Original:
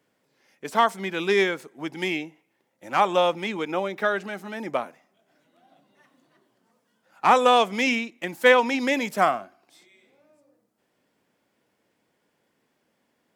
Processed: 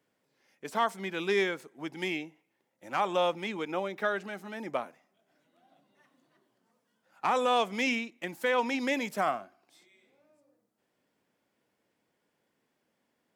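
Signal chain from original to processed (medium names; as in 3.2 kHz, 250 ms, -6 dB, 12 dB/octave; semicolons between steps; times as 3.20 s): peak limiter -11 dBFS, peak gain reduction 8 dB; trim -6 dB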